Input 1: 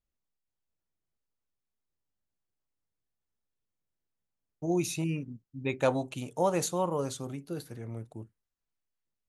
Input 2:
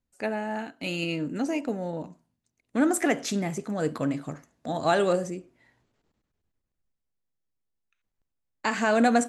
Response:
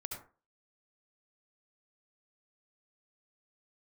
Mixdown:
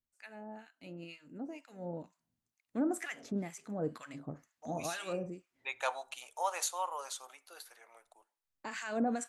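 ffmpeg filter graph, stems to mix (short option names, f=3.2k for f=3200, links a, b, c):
-filter_complex "[0:a]highpass=f=770:w=0.5412,highpass=f=770:w=1.3066,dynaudnorm=f=400:g=7:m=6dB,volume=-7.5dB,asplit=2[a][b];[b]volume=-19dB[c];[1:a]alimiter=limit=-16dB:level=0:latency=1:release=81,acrossover=split=1100[d][e];[d]aeval=exprs='val(0)*(1-1/2+1/2*cos(2*PI*2.1*n/s))':c=same[f];[e]aeval=exprs='val(0)*(1-1/2-1/2*cos(2*PI*2.1*n/s))':c=same[g];[f][g]amix=inputs=2:normalize=0,volume=-6.5dB,afade=t=in:st=1.6:d=0.31:silence=0.473151,asplit=2[h][i];[i]apad=whole_len=409546[j];[a][j]sidechaincompress=threshold=-41dB:ratio=8:attack=9.2:release=165[k];[2:a]atrim=start_sample=2205[l];[c][l]afir=irnorm=-1:irlink=0[m];[k][h][m]amix=inputs=3:normalize=0"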